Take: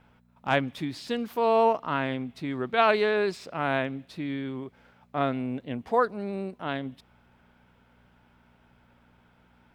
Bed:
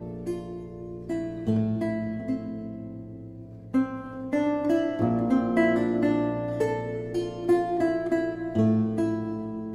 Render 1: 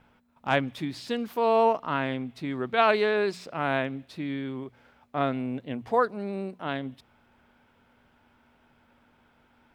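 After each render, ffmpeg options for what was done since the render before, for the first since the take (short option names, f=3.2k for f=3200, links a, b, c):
-af "bandreject=f=60:t=h:w=4,bandreject=f=120:t=h:w=4,bandreject=f=180:t=h:w=4"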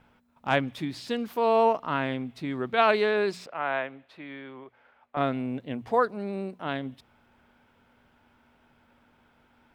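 -filter_complex "[0:a]asettb=1/sr,asplit=3[a][b][c];[a]atrim=end=3.464[d];[b]atrim=start=3.46:end=5.17,asetpts=PTS-STARTPTS,afade=t=in:d=0.004:c=qsin,afade=t=out:st=1.706:d=0.004:c=qsin,acrossover=split=460 3100:gain=0.178 1 0.158[e][f][g];[e][f][g]amix=inputs=3:normalize=0[h];[c]atrim=start=5.166[i];[d][h]acrossfade=d=0.004:c1=hsin:c2=qsin[j];[j][i]acrossfade=d=0.004:c1=qsin:c2=hsin"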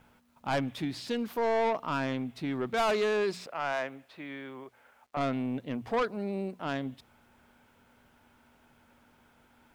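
-af "asoftclip=type=tanh:threshold=-23.5dB,acrusher=bits=11:mix=0:aa=0.000001"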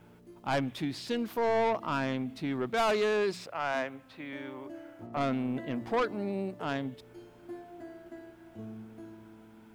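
-filter_complex "[1:a]volume=-21.5dB[a];[0:a][a]amix=inputs=2:normalize=0"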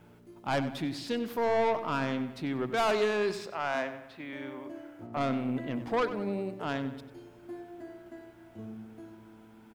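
-filter_complex "[0:a]asplit=2[a][b];[b]adelay=95,lowpass=f=4.3k:p=1,volume=-11.5dB,asplit=2[c][d];[d]adelay=95,lowpass=f=4.3k:p=1,volume=0.51,asplit=2[e][f];[f]adelay=95,lowpass=f=4.3k:p=1,volume=0.51,asplit=2[g][h];[h]adelay=95,lowpass=f=4.3k:p=1,volume=0.51,asplit=2[i][j];[j]adelay=95,lowpass=f=4.3k:p=1,volume=0.51[k];[a][c][e][g][i][k]amix=inputs=6:normalize=0"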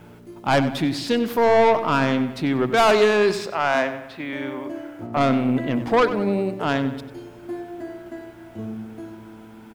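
-af "volume=11dB"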